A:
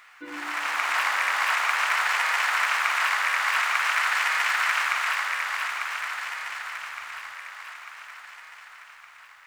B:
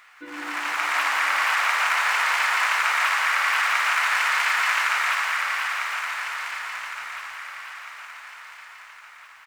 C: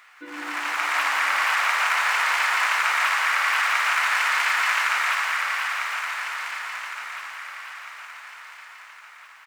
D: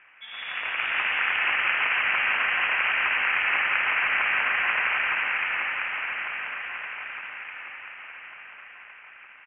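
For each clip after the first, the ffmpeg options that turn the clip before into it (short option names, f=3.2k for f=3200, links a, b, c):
-af "aecho=1:1:170|314.5|437.3|541.7|630.5:0.631|0.398|0.251|0.158|0.1"
-af "highpass=150"
-af "tremolo=f=220:d=0.571,aecho=1:1:486:0.376,lowpass=f=3.1k:t=q:w=0.5098,lowpass=f=3.1k:t=q:w=0.6013,lowpass=f=3.1k:t=q:w=0.9,lowpass=f=3.1k:t=q:w=2.563,afreqshift=-3700"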